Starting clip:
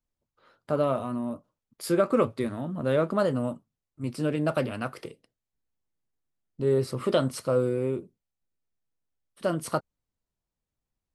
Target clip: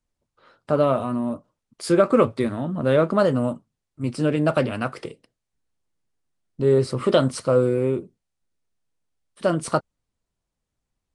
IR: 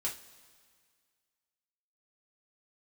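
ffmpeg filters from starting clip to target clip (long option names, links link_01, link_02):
-af "volume=6dB" -ar 22050 -c:a nellymoser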